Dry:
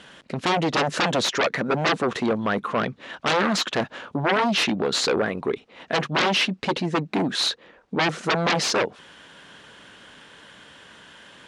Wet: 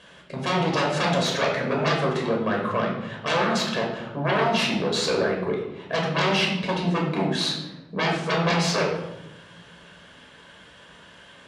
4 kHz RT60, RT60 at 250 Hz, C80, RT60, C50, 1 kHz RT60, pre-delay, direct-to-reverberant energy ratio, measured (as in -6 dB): 0.60 s, 1.6 s, 7.0 dB, 0.95 s, 4.0 dB, 0.90 s, 13 ms, -1.0 dB